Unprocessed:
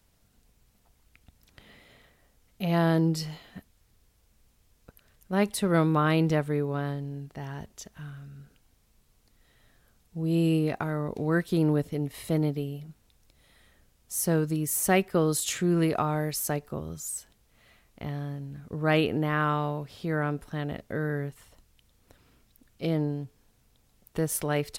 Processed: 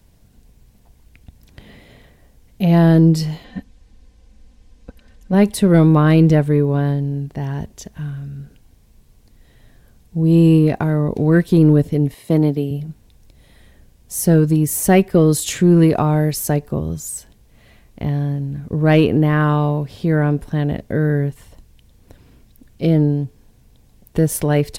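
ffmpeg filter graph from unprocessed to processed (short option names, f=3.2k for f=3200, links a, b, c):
-filter_complex "[0:a]asettb=1/sr,asplit=3[a][b][c];[a]atrim=end=3.444[d];[b]atrim=start=3.44:end=5.34,asetpts=PTS-STARTPTS,afade=t=in:d=0.004:c=qsin,afade=t=out:st=1.896:d=0.004:c=qsin,lowpass=6.8k,aecho=1:1:3.9:0.68,atrim=end_sample=83790[e];[c]atrim=start=5.336[f];[d][e]acrossfade=d=0.004:c1=hsin:c2=qsin[g];[g][f]acrossfade=d=0.004:c1=qsin:c2=hsin,asettb=1/sr,asplit=3[h][i][j];[h]atrim=end=12.144[k];[i]atrim=start=12.14:end=12.71,asetpts=PTS-STARTPTS,afade=t=in:d=0.004:c=qsin,afade=t=out:st=0.566:d=0.004:c=qsin,highpass=170,agate=range=-8dB:threshold=-41dB:ratio=16:release=100:detection=peak[l];[j]atrim=start=12.706[m];[k][l]acrossfade=d=0.004:c1=hsin:c2=qsin[n];[n][m]acrossfade=d=0.004:c1=qsin:c2=hsin,lowshelf=f=490:g=9,bandreject=f=1.3k:w=8,acontrast=38,volume=1dB"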